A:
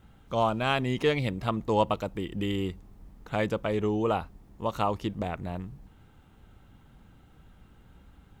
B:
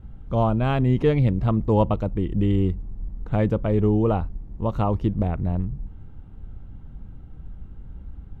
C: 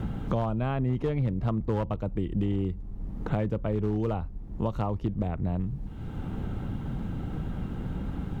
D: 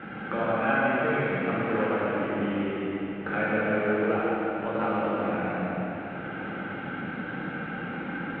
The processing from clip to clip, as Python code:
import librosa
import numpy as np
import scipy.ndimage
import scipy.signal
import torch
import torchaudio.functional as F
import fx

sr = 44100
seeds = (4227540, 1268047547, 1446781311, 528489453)

y1 = fx.tilt_eq(x, sr, slope=-4.0)
y2 = fx.clip_asym(y1, sr, top_db=-15.0, bottom_db=-12.0)
y2 = fx.band_squash(y2, sr, depth_pct=100)
y2 = F.gain(torch.from_numpy(y2), -7.0).numpy()
y3 = fx.cabinet(y2, sr, low_hz=420.0, low_slope=12, high_hz=2700.0, hz=(420.0, 660.0, 980.0, 1500.0, 2300.0), db=(-6, -5, -10, 9, 6))
y3 = y3 + 10.0 ** (-5.5 / 20.0) * np.pad(y3, (int(150 * sr / 1000.0), 0))[:len(y3)]
y3 = fx.rev_plate(y3, sr, seeds[0], rt60_s=3.8, hf_ratio=0.95, predelay_ms=0, drr_db=-8.5)
y3 = F.gain(torch.from_numpy(y3), 2.0).numpy()